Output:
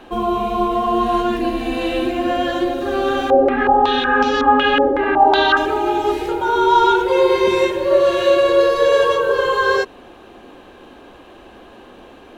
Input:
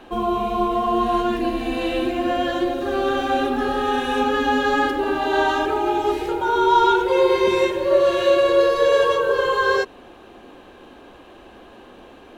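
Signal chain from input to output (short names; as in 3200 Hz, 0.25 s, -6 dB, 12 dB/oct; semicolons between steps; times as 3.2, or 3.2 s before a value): 3.3–5.57 stepped low-pass 5.4 Hz 590–5300 Hz; gain +2.5 dB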